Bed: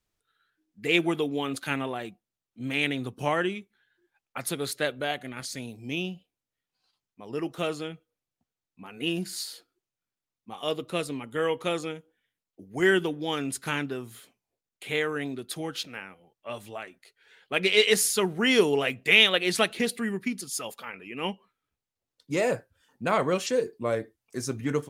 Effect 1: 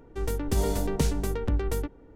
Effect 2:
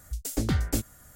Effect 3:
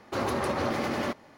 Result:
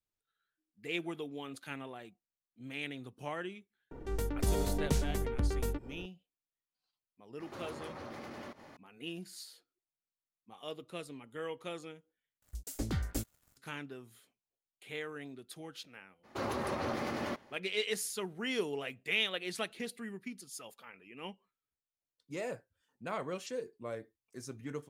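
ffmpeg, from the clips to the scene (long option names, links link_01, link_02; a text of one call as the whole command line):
ffmpeg -i bed.wav -i cue0.wav -i cue1.wav -i cue2.wav -filter_complex "[3:a]asplit=2[link_01][link_02];[0:a]volume=-13.5dB[link_03];[1:a]acompressor=mode=upward:threshold=-30dB:ratio=2.5:attack=3.2:release=140:knee=2.83:detection=peak[link_04];[link_01]acompressor=threshold=-47dB:ratio=3:attack=1.1:release=110:knee=1:detection=peak[link_05];[2:a]aeval=exprs='sgn(val(0))*max(abs(val(0))-0.00299,0)':channel_layout=same[link_06];[link_03]asplit=2[link_07][link_08];[link_07]atrim=end=12.424[link_09];[link_06]atrim=end=1.15,asetpts=PTS-STARTPTS,volume=-8.5dB[link_10];[link_08]atrim=start=13.566[link_11];[link_04]atrim=end=2.15,asetpts=PTS-STARTPTS,volume=-5.5dB,afade=type=in:duration=0.004:curve=hsin,afade=type=out:start_time=2.146:duration=0.004:curve=hsin,adelay=3910[link_12];[link_05]atrim=end=1.37,asetpts=PTS-STARTPTS,volume=-0.5dB,afade=type=in:duration=0.004:curve=hsin,afade=type=out:start_time=1.366:duration=0.004:curve=hsin,adelay=7400[link_13];[link_02]atrim=end=1.37,asetpts=PTS-STARTPTS,volume=-7dB,afade=type=in:duration=0.02,afade=type=out:start_time=1.35:duration=0.02,adelay=16230[link_14];[link_09][link_10]acrossfade=duration=0.004:curve1=hsin:curve2=hsin[link_15];[link_15][link_11]acrossfade=duration=0.004:curve1=hsin:curve2=hsin[link_16];[link_16][link_12][link_13][link_14]amix=inputs=4:normalize=0" out.wav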